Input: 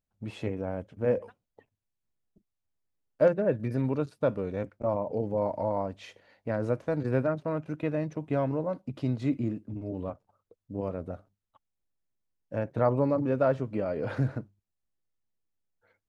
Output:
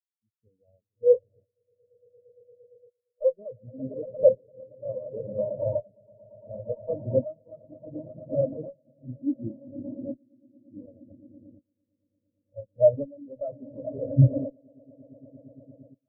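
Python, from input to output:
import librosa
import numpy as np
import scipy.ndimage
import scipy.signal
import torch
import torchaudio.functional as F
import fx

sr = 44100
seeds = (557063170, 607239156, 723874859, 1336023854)

y = fx.leveller(x, sr, passes=2)
y = fx.echo_swell(y, sr, ms=115, loudest=8, wet_db=-9)
y = fx.tremolo_shape(y, sr, shape='saw_up', hz=0.69, depth_pct=55)
y = fx.cheby_harmonics(y, sr, harmonics=(6,), levels_db=(-14,), full_scale_db=-7.5)
y = fx.spectral_expand(y, sr, expansion=4.0)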